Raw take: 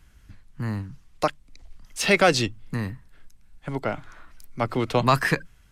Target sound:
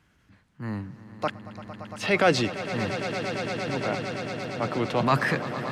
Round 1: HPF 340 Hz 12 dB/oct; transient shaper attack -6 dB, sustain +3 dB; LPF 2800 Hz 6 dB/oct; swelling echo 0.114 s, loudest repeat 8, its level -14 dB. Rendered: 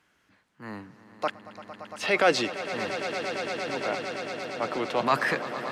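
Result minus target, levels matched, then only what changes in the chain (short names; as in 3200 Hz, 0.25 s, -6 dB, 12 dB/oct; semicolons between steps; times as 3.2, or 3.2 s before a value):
125 Hz band -11.5 dB
change: HPF 130 Hz 12 dB/oct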